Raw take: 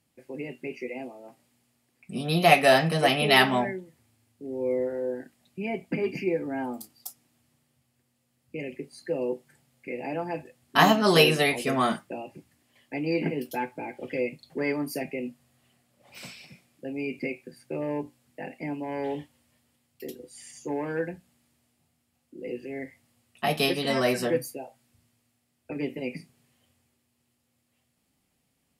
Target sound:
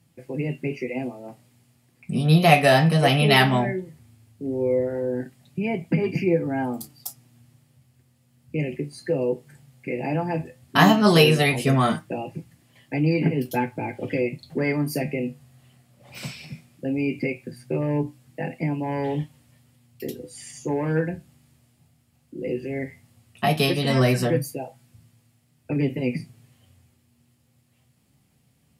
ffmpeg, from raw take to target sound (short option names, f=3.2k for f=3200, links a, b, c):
-filter_complex "[0:a]equalizer=f=120:w=1.1:g=12.5,asplit=2[a][b];[b]acompressor=threshold=-29dB:ratio=6,volume=-0.5dB[c];[a][c]amix=inputs=2:normalize=0,flanger=delay=5.9:depth=8.4:regen=67:speed=0.16:shape=sinusoidal,volume=4dB"